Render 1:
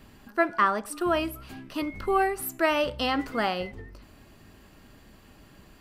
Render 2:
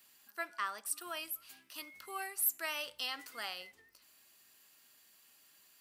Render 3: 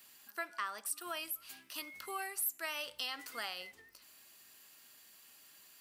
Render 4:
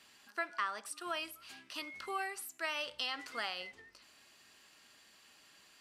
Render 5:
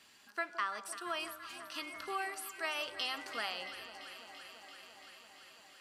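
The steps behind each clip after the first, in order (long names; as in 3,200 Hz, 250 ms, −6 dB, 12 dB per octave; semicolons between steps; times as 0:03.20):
first difference
downward compressor 2 to 1, threshold −44 dBFS, peak gain reduction 9.5 dB; level +4.5 dB
high-frequency loss of the air 76 metres; level +3.5 dB
delay that swaps between a low-pass and a high-pass 169 ms, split 1,100 Hz, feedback 88%, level −11 dB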